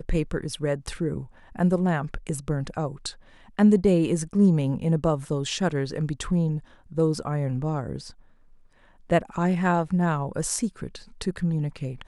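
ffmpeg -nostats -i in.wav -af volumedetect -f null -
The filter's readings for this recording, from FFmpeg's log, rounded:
mean_volume: -25.4 dB
max_volume: -7.3 dB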